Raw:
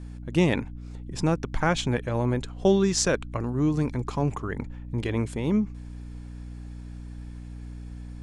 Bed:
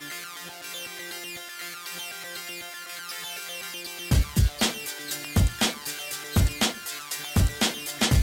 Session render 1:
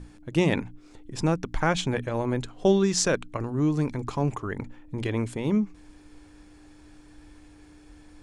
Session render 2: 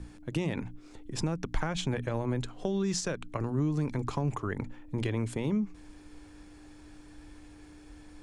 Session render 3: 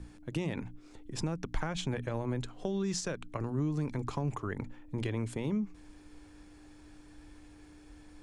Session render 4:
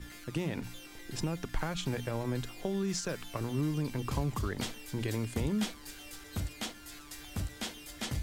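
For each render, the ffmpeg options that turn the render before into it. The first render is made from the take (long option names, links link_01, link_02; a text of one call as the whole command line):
ffmpeg -i in.wav -af "bandreject=frequency=60:width_type=h:width=6,bandreject=frequency=120:width_type=h:width=6,bandreject=frequency=180:width_type=h:width=6,bandreject=frequency=240:width_type=h:width=6" out.wav
ffmpeg -i in.wav -filter_complex "[0:a]alimiter=limit=-17.5dB:level=0:latency=1:release=105,acrossover=split=170[link_01][link_02];[link_02]acompressor=threshold=-30dB:ratio=5[link_03];[link_01][link_03]amix=inputs=2:normalize=0" out.wav
ffmpeg -i in.wav -af "volume=-3dB" out.wav
ffmpeg -i in.wav -i bed.wav -filter_complex "[1:a]volume=-14.5dB[link_01];[0:a][link_01]amix=inputs=2:normalize=0" out.wav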